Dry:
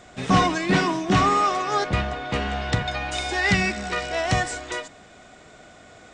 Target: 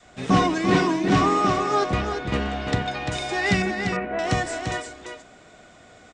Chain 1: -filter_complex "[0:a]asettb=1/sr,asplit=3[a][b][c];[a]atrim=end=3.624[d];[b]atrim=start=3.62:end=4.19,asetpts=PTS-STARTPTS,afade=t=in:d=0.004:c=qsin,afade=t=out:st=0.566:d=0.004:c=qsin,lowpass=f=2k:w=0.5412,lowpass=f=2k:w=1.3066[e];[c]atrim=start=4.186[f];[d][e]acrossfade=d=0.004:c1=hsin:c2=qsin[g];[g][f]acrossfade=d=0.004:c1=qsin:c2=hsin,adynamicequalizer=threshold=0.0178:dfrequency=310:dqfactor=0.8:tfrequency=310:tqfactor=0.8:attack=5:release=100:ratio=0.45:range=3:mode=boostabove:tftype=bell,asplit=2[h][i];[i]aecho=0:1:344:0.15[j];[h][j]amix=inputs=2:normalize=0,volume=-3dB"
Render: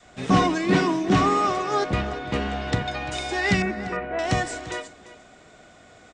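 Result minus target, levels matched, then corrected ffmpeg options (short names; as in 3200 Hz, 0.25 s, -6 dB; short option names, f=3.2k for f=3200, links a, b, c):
echo-to-direct -10.5 dB
-filter_complex "[0:a]asettb=1/sr,asplit=3[a][b][c];[a]atrim=end=3.624[d];[b]atrim=start=3.62:end=4.19,asetpts=PTS-STARTPTS,afade=t=in:d=0.004:c=qsin,afade=t=out:st=0.566:d=0.004:c=qsin,lowpass=f=2k:w=0.5412,lowpass=f=2k:w=1.3066[e];[c]atrim=start=4.186[f];[d][e]acrossfade=d=0.004:c1=hsin:c2=qsin[g];[g][f]acrossfade=d=0.004:c1=qsin:c2=hsin,adynamicequalizer=threshold=0.0178:dfrequency=310:dqfactor=0.8:tfrequency=310:tqfactor=0.8:attack=5:release=100:ratio=0.45:range=3:mode=boostabove:tftype=bell,asplit=2[h][i];[i]aecho=0:1:344:0.501[j];[h][j]amix=inputs=2:normalize=0,volume=-3dB"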